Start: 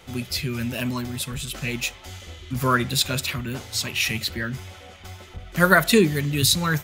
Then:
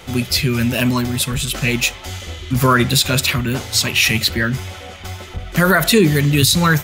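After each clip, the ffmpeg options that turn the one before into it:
ffmpeg -i in.wav -af "alimiter=level_in=12.5dB:limit=-1dB:release=50:level=0:latency=1,volume=-2.5dB" out.wav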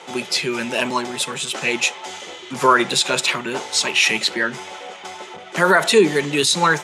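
ffmpeg -i in.wav -af "highpass=frequency=220:width=0.5412,highpass=frequency=220:width=1.3066,equalizer=frequency=250:width_type=q:width=4:gain=-9,equalizer=frequency=420:width_type=q:width=4:gain=4,equalizer=frequency=890:width_type=q:width=4:gain=9,equalizer=frequency=4600:width_type=q:width=4:gain=-3,lowpass=frequency=9000:width=0.5412,lowpass=frequency=9000:width=1.3066,volume=-1dB" out.wav

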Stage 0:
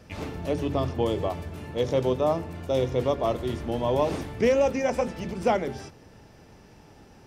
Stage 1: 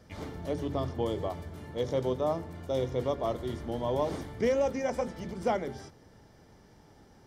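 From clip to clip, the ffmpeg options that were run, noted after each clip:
ffmpeg -i in.wav -af "bandreject=frequency=2600:width=5.3,volume=-5.5dB" out.wav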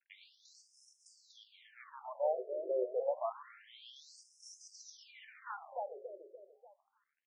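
ffmpeg -i in.wav -af "aeval=exprs='sgn(val(0))*max(abs(val(0))-0.00299,0)':channel_layout=same,aecho=1:1:292|584|876|1168|1460:0.447|0.192|0.0826|0.0355|0.0153,afftfilt=real='re*between(b*sr/1024,460*pow(7300/460,0.5+0.5*sin(2*PI*0.28*pts/sr))/1.41,460*pow(7300/460,0.5+0.5*sin(2*PI*0.28*pts/sr))*1.41)':imag='im*between(b*sr/1024,460*pow(7300/460,0.5+0.5*sin(2*PI*0.28*pts/sr))/1.41,460*pow(7300/460,0.5+0.5*sin(2*PI*0.28*pts/sr))*1.41)':win_size=1024:overlap=0.75,volume=-2.5dB" out.wav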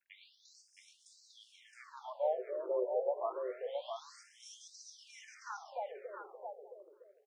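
ffmpeg -i in.wav -af "aecho=1:1:669:0.531" out.wav

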